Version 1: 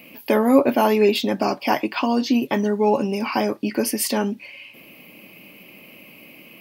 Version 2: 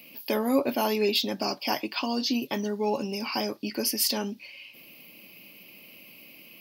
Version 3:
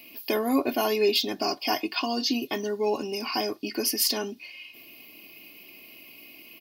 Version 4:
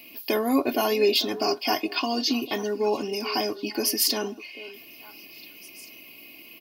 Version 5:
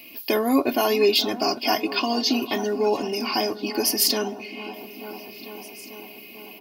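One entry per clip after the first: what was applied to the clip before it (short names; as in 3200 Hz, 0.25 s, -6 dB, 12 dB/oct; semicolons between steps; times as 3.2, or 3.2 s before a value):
EQ curve 1900 Hz 0 dB, 5000 Hz +13 dB, 8300 Hz +2 dB, 13000 Hz +10 dB; gain -9 dB
comb 2.8 ms, depth 61%
delay with a stepping band-pass 0.443 s, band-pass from 410 Hz, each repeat 1.4 oct, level -11 dB; gain +1.5 dB
dark delay 0.444 s, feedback 75%, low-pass 1000 Hz, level -11 dB; gain +2.5 dB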